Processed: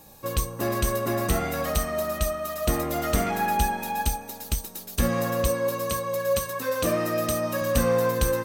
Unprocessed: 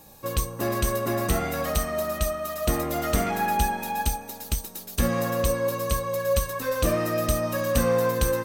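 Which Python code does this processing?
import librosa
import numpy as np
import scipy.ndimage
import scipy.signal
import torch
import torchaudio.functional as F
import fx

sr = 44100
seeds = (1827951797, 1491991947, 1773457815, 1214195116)

y = fx.highpass(x, sr, hz=120.0, slope=12, at=(5.48, 7.62))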